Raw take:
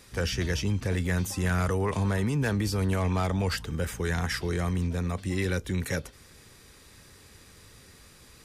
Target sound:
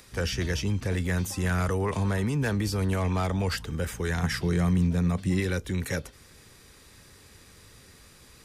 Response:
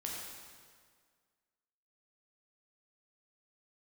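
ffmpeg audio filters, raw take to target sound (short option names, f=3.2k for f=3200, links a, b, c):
-filter_complex "[0:a]asettb=1/sr,asplit=3[a][b][c];[a]atrim=end=4.234[d];[b]atrim=start=4.23:end=5.4,asetpts=PTS-STARTPTS,afade=t=in:d=0.004:c=qsin,afade=t=out:st=1.166:d=0.004:c=qsin,equalizer=f=160:w=1.4:g=8.5[e];[c]atrim=start=5.396[f];[d][e]acrossfade=d=0.004:c1=hsin:c2=qsin[g];[g][f]acrossfade=d=0.004:c1=qsin:c2=hsin,acrossover=split=440[h][i];[i]acompressor=mode=upward:threshold=-54dB:ratio=2.5[j];[h][j]amix=inputs=2:normalize=0"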